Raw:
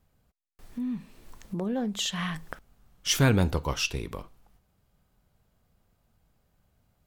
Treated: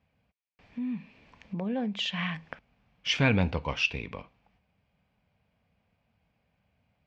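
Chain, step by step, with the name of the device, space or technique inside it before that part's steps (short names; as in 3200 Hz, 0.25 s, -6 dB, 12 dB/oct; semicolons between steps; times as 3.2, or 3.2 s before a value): guitar cabinet (speaker cabinet 86–4300 Hz, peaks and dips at 130 Hz -4 dB, 360 Hz -10 dB, 1300 Hz -6 dB, 2400 Hz +9 dB, 3900 Hz -5 dB)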